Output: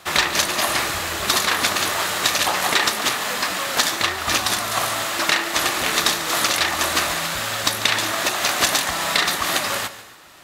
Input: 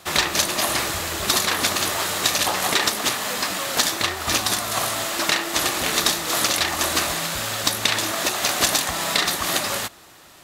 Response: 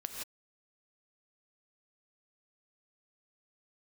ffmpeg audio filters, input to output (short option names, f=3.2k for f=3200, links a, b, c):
-filter_complex "[0:a]equalizer=f=1.6k:w=0.5:g=5,asplit=2[a][b];[1:a]atrim=start_sample=2205,atrim=end_sample=6615,adelay=144[c];[b][c]afir=irnorm=-1:irlink=0,volume=-13dB[d];[a][d]amix=inputs=2:normalize=0,volume=-1.5dB"